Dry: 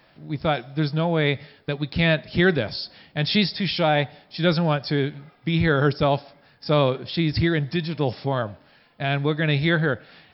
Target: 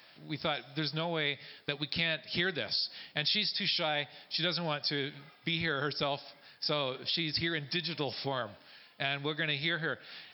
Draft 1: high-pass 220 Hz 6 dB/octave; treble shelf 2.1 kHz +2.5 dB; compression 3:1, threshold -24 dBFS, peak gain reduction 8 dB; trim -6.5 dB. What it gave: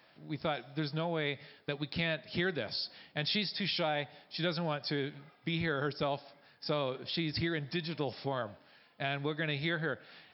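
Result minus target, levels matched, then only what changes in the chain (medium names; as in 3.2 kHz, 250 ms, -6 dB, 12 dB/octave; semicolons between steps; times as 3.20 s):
4 kHz band -3.0 dB
change: treble shelf 2.1 kHz +14.5 dB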